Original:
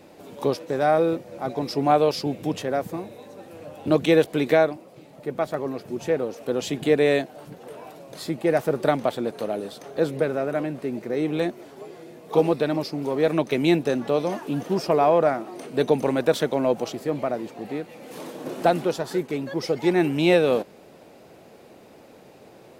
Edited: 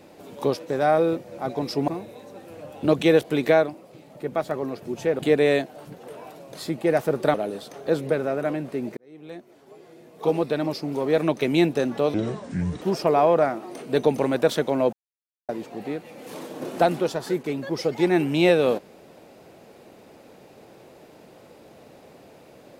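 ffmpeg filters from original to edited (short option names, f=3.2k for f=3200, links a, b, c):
-filter_complex "[0:a]asplit=9[a][b][c][d][e][f][g][h][i];[a]atrim=end=1.882[j];[b]atrim=start=2.908:end=6.222[k];[c]atrim=start=6.788:end=8.942[l];[d]atrim=start=9.438:end=11.07,asetpts=PTS-STARTPTS,afade=t=out:st=1.628:d=0.004:c=hsin[m];[e]atrim=start=11.07:end=14.244,asetpts=PTS-STARTPTS,afade=t=in:d=1.88[n];[f]atrim=start=14.24:end=14.66,asetpts=PTS-STARTPTS,asetrate=27342,aresample=44100,atrim=end_sample=29874,asetpts=PTS-STARTPTS[o];[g]atrim=start=14.656:end=16.77,asetpts=PTS-STARTPTS,afade=t=out:st=2.11:d=0.004:c=hsin[p];[h]atrim=start=16.77:end=17.33,asetpts=PTS-STARTPTS,volume=0[q];[i]atrim=start=17.33,asetpts=PTS-STARTPTS,afade=t=in:d=0.004:c=hsin[r];[j][k]acrossfade=d=0.004:c1=hsin:c2=hsin[s];[s][l]acrossfade=d=0.004:c1=hsin:c2=hsin[t];[m][n]concat=n=2:v=0:a=1[u];[t][u]acrossfade=d=0.004:c1=hsin:c2=hsin[v];[v][o]acrossfade=d=0.004:c1=hsin:c2=hsin[w];[p][q][r]concat=n=3:v=0:a=1[x];[w][x]acrossfade=d=0.004:c1=hsin:c2=hsin"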